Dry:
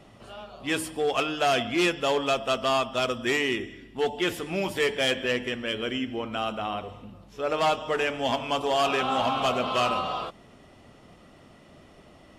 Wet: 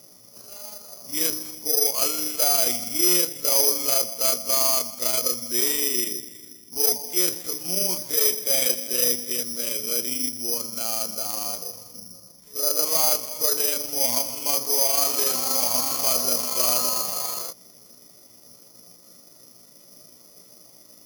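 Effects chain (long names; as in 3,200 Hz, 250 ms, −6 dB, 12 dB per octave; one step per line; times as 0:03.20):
time stretch by overlap-add 1.7×, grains 81 ms
loudspeaker in its box 130–4,800 Hz, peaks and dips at 520 Hz +4 dB, 780 Hz −4 dB, 1,700 Hz −9 dB, 2,700 Hz −9 dB
bad sample-rate conversion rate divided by 8×, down none, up zero stuff
level −4 dB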